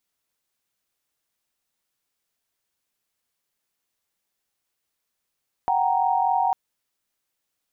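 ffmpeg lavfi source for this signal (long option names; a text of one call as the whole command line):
ffmpeg -f lavfi -i "aevalsrc='0.0708*(sin(2*PI*739.99*t)+sin(2*PI*783.99*t)+sin(2*PI*932.33*t))':duration=0.85:sample_rate=44100" out.wav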